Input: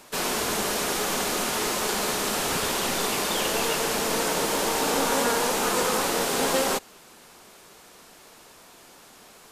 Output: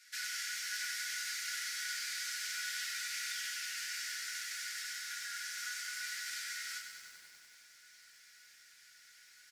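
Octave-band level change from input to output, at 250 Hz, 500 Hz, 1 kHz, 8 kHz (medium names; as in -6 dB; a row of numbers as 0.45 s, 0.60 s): under -40 dB, under -40 dB, -24.5 dB, -12.5 dB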